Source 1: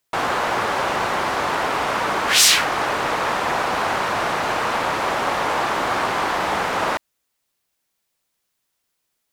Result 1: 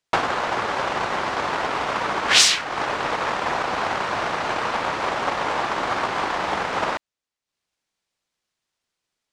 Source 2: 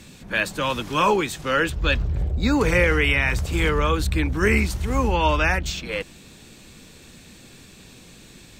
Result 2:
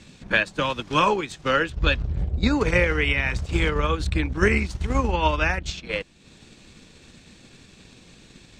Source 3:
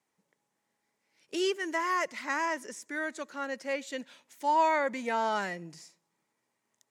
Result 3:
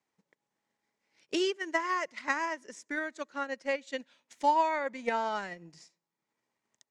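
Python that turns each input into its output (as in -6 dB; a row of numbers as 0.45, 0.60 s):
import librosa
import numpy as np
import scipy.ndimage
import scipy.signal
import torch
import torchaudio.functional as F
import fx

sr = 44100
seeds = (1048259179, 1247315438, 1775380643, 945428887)

y = fx.high_shelf(x, sr, hz=5500.0, db=10.0)
y = fx.transient(y, sr, attack_db=9, sustain_db=-7)
y = fx.air_absorb(y, sr, metres=110.0)
y = y * 10.0 ** (-3.0 / 20.0)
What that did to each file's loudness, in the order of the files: -2.5, -1.5, -1.0 LU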